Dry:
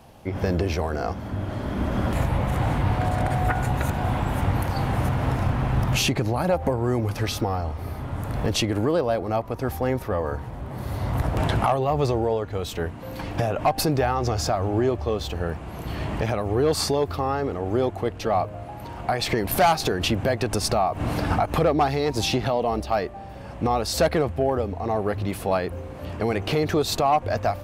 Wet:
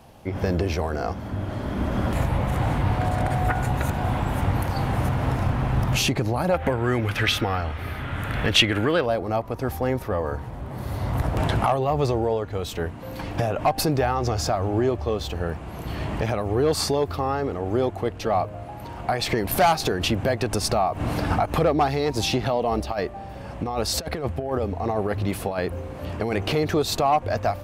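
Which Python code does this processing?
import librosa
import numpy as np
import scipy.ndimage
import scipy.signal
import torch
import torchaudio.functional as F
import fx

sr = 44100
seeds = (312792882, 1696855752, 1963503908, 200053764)

y = fx.band_shelf(x, sr, hz=2200.0, db=11.5, octaves=1.7, at=(6.54, 9.06))
y = fx.over_compress(y, sr, threshold_db=-24.0, ratio=-0.5, at=(22.71, 26.54))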